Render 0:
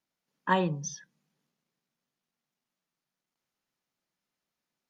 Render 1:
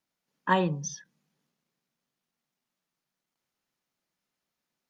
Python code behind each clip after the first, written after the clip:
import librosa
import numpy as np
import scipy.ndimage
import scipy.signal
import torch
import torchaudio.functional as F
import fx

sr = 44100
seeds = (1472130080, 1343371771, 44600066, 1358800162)

y = fx.end_taper(x, sr, db_per_s=390.0)
y = F.gain(torch.from_numpy(y), 1.5).numpy()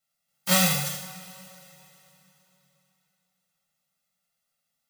y = fx.envelope_flatten(x, sr, power=0.1)
y = y + 0.93 * np.pad(y, (int(1.5 * sr / 1000.0), 0))[:len(y)]
y = fx.rev_double_slope(y, sr, seeds[0], early_s=0.53, late_s=3.5, knee_db=-19, drr_db=-1.5)
y = F.gain(torch.from_numpy(y), -1.5).numpy()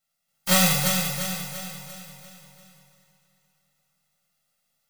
y = np.where(x < 0.0, 10.0 ** (-3.0 / 20.0) * x, x)
y = fx.rider(y, sr, range_db=10, speed_s=0.5)
y = fx.echo_feedback(y, sr, ms=344, feedback_pct=48, wet_db=-6.5)
y = F.gain(torch.from_numpy(y), 6.0).numpy()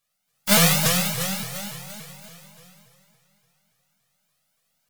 y = fx.vibrato_shape(x, sr, shape='saw_up', rate_hz=3.5, depth_cents=250.0)
y = F.gain(torch.from_numpy(y), 2.5).numpy()